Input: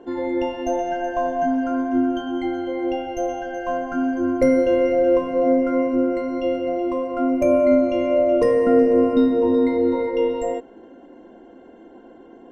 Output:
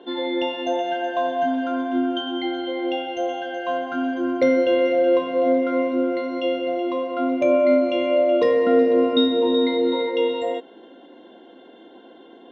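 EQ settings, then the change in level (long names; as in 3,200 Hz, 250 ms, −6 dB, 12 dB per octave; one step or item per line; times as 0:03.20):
Bessel high-pass filter 260 Hz, order 2
low-pass with resonance 3,600 Hz, resonance Q 13
0.0 dB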